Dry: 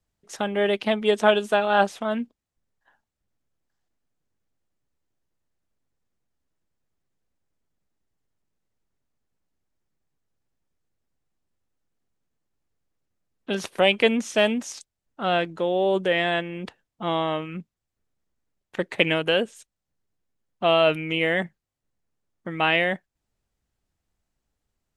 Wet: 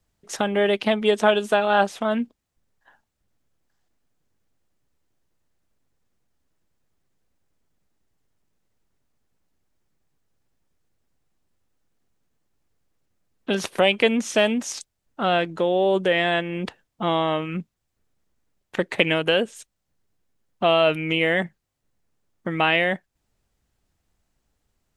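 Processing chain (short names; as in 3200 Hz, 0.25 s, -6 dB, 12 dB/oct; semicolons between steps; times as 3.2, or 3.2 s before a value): compressor 1.5:1, threshold -31 dBFS, peak gain reduction 7 dB; gain +6.5 dB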